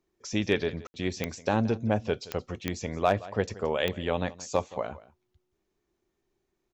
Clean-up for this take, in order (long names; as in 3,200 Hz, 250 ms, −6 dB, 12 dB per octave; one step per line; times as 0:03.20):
clipped peaks rebuilt −11.5 dBFS
click removal
ambience match 0:00.87–0:00.94
echo removal 173 ms −19 dB